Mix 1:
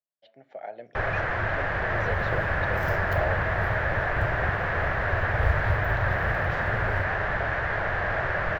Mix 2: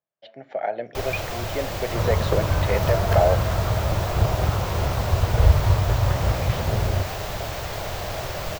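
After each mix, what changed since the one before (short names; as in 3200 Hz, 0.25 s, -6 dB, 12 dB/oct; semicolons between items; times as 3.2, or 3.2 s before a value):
speech +11.5 dB; first sound: remove synth low-pass 1700 Hz, resonance Q 5.6; second sound +9.0 dB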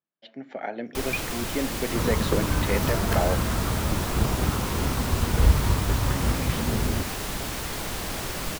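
master: add fifteen-band EQ 100 Hz -9 dB, 250 Hz +11 dB, 630 Hz -10 dB, 10000 Hz +11 dB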